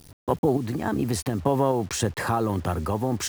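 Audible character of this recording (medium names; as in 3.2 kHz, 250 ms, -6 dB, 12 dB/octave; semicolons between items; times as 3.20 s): random-step tremolo; a quantiser's noise floor 8-bit, dither none; IMA ADPCM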